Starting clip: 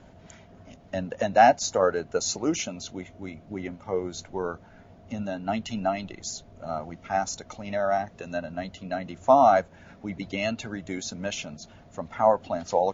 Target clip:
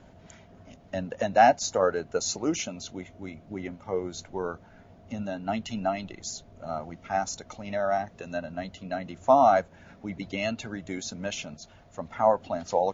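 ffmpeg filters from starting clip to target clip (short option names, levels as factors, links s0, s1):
-filter_complex "[0:a]asettb=1/sr,asplit=3[s0][s1][s2];[s0]atrim=end=11.544[s3];[s1]atrim=start=11.54:end=11.99,asetpts=PTS-STARTPTS,afade=t=in:d=0.004:c=qsin,afade=t=out:st=0.446:d=0.004:c=qsin,equalizer=f=220:t=o:w=1.6:g=-6[s4];[s2]atrim=start=11.986[s5];[s3][s4]acrossfade=d=0.004:c1=hsin:c2=qsin[s6];[s6][s5]acrossfade=d=0.004:c1=qsin:c2=hsin,volume=0.841"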